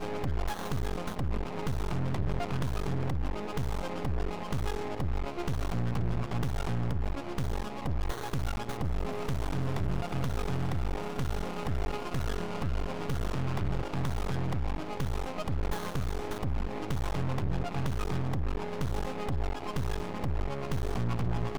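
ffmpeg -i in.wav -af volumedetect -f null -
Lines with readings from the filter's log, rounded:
mean_volume: -30.2 dB
max_volume: -21.3 dB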